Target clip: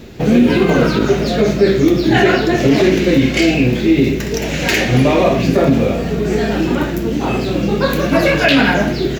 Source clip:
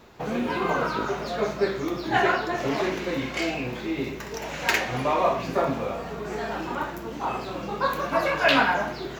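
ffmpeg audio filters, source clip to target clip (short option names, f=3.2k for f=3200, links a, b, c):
-af "firequalizer=gain_entry='entry(260,0);entry(1000,-19);entry(1700,-9);entry(2600,-6)':delay=0.05:min_phase=1,alimiter=level_in=21dB:limit=-1dB:release=50:level=0:latency=1,volume=-1.5dB"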